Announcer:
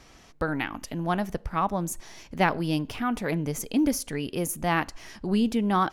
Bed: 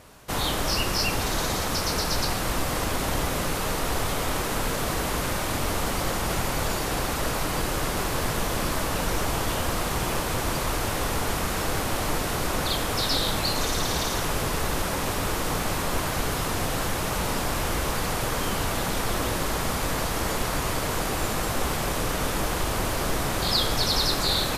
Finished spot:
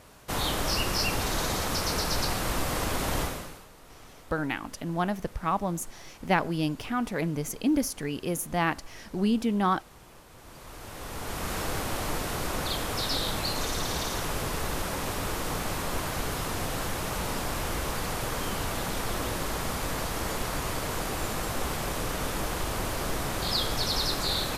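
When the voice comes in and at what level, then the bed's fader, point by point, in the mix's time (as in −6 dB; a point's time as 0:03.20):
3.90 s, −1.5 dB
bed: 0:03.22 −2.5 dB
0:03.69 −25 dB
0:10.30 −25 dB
0:11.52 −4.5 dB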